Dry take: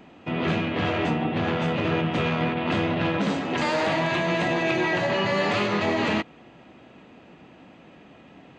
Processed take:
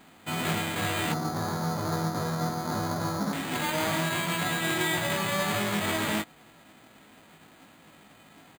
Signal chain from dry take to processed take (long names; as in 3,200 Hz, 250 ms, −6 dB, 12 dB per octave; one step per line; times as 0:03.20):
spectral envelope flattened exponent 0.3
0:01.12–0:03.33: low-pass filter 1,400 Hz 24 dB per octave
double-tracking delay 19 ms −5.5 dB
bad sample-rate conversion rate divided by 8×, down filtered, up hold
level −4 dB